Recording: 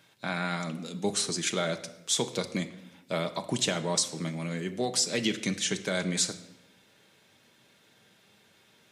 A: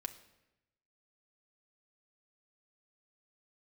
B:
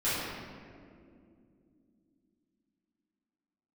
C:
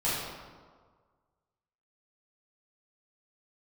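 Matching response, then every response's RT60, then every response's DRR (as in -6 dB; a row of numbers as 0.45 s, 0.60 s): A; 0.95 s, 2.5 s, 1.6 s; 6.0 dB, -14.0 dB, -10.5 dB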